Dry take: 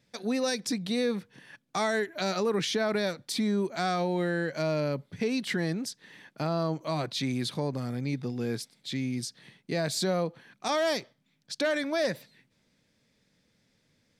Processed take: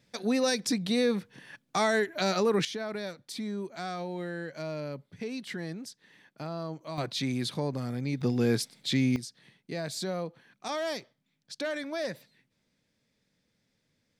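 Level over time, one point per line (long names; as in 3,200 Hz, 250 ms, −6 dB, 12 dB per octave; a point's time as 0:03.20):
+2 dB
from 0:02.65 −7.5 dB
from 0:06.98 −0.5 dB
from 0:08.21 +6 dB
from 0:09.16 −5.5 dB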